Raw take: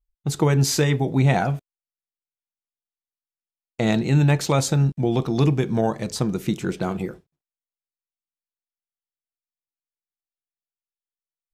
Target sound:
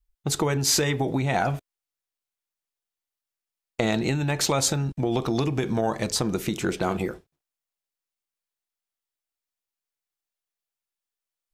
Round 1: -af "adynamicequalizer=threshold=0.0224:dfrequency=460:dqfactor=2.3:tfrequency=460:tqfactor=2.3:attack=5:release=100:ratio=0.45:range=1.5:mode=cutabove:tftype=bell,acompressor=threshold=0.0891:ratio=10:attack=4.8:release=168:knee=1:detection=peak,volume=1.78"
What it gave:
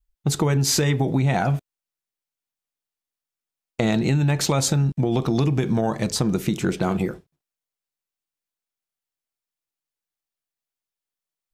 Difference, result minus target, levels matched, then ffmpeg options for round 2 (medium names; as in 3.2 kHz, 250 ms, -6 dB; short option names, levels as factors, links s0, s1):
125 Hz band +3.5 dB
-af "adynamicequalizer=threshold=0.0224:dfrequency=460:dqfactor=2.3:tfrequency=460:tqfactor=2.3:attack=5:release=100:ratio=0.45:range=1.5:mode=cutabove:tftype=bell,acompressor=threshold=0.0891:ratio=10:attack=4.8:release=168:knee=1:detection=peak,equalizer=f=160:w=0.98:g=-7.5,volume=1.78"